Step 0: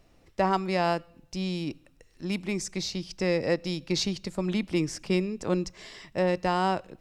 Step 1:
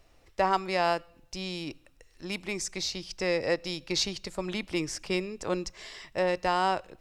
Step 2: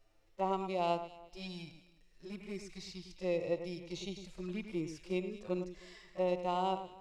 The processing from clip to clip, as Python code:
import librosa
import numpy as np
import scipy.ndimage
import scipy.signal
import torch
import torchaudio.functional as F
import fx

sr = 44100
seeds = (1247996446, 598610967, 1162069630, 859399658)

y1 = fx.peak_eq(x, sr, hz=190.0, db=-10.0, octaves=1.8)
y1 = F.gain(torch.from_numpy(y1), 1.5).numpy()
y2 = fx.env_flanger(y1, sr, rest_ms=10.3, full_db=-27.5)
y2 = fx.echo_alternate(y2, sr, ms=105, hz=2300.0, feedback_pct=50, wet_db=-9.5)
y2 = fx.hpss(y2, sr, part='percussive', gain_db=-18)
y2 = F.gain(torch.from_numpy(y2), -4.0).numpy()